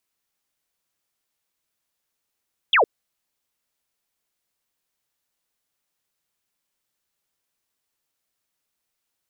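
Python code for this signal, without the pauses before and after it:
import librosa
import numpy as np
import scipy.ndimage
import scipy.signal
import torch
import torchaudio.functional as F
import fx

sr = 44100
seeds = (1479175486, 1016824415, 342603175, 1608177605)

y = fx.laser_zap(sr, level_db=-13, start_hz=3600.0, end_hz=380.0, length_s=0.11, wave='sine')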